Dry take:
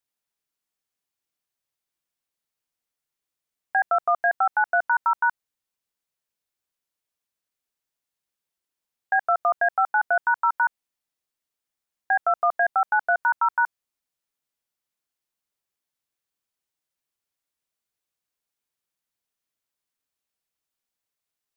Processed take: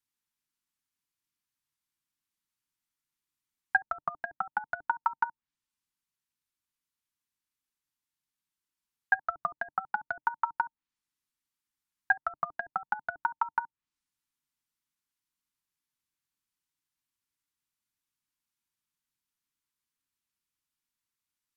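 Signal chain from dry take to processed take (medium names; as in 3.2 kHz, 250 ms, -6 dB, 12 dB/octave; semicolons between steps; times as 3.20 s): gain riding 2 s; low-pass that closes with the level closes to 380 Hz, closed at -19 dBFS; FFT filter 300 Hz 0 dB, 610 Hz -23 dB, 910 Hz -2 dB; transient shaper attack +7 dB, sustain +1 dB; peaking EQ 140 Hz +2 dB 0.36 oct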